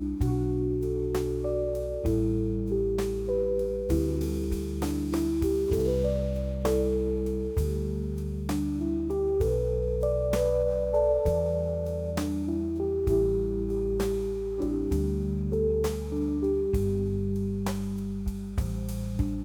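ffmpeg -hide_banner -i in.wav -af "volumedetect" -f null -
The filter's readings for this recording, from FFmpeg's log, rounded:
mean_volume: -27.4 dB
max_volume: -13.5 dB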